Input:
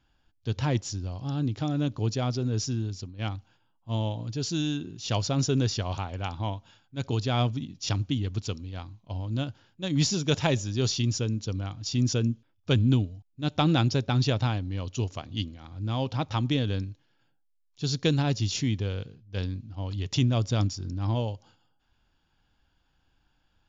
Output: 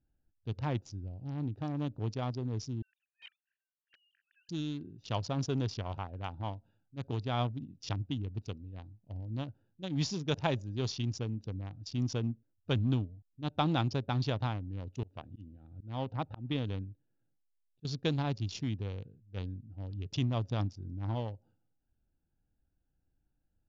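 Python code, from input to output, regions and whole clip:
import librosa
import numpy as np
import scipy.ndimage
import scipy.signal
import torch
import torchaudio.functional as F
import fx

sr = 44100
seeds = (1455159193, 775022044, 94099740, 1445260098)

y = fx.chain(x, sr, fx.sine_speech(),
    fx.steep_highpass(hz=1600.0, slope=72), at=(2.82, 4.49))
y = fx.chain(y, sr, fx.lowpass(hz=4300.0, slope=24),
    fx.auto_swell(attack_ms=172.0), at=(15.03, 17.85))
y = fx.wiener(y, sr, points=41)
y = scipy.signal.sosfilt(scipy.signal.butter(4, 6100.0, 'lowpass', fs=sr, output='sos'), y)
y = fx.dynamic_eq(y, sr, hz=930.0, q=1.3, threshold_db=-48.0, ratio=4.0, max_db=6)
y = y * 10.0 ** (-7.5 / 20.0)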